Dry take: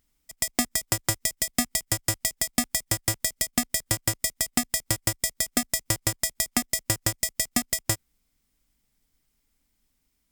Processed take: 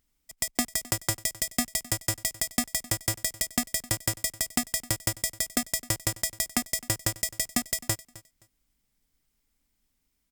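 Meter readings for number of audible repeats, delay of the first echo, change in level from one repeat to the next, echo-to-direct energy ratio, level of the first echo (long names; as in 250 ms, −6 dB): 2, 261 ms, −14.0 dB, −20.0 dB, −20.0 dB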